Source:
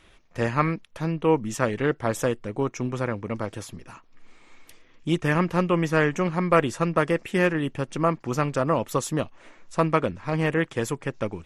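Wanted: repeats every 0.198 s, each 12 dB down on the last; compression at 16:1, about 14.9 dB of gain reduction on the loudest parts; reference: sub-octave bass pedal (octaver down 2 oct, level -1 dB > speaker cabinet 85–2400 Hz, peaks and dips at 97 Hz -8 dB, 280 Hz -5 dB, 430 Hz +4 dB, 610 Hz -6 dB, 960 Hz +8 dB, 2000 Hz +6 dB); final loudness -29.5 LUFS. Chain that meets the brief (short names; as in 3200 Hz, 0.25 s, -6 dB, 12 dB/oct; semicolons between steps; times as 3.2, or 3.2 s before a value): compressor 16:1, threshold -30 dBFS; feedback echo 0.198 s, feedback 25%, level -12 dB; octaver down 2 oct, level -1 dB; speaker cabinet 85–2400 Hz, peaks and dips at 97 Hz -8 dB, 280 Hz -5 dB, 430 Hz +4 dB, 610 Hz -6 dB, 960 Hz +8 dB, 2000 Hz +6 dB; gain +6 dB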